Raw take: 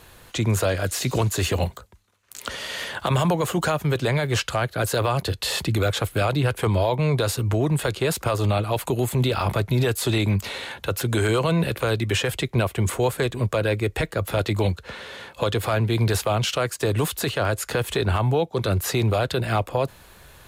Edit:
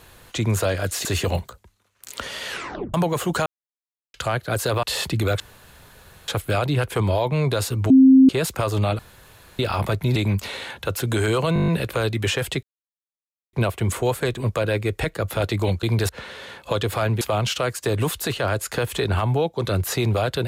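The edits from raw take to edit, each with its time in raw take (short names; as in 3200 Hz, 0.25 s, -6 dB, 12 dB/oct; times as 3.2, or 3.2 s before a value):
1.05–1.33 cut
2.76 tape stop 0.46 s
3.74–4.42 mute
5.11–5.38 cut
5.95 insert room tone 0.88 s
7.57–7.96 bleep 264 Hz -7.5 dBFS
8.66–9.26 room tone
9.83–10.17 cut
11.55 stutter 0.02 s, 8 plays
12.5 insert silence 0.90 s
15.92–16.18 move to 14.8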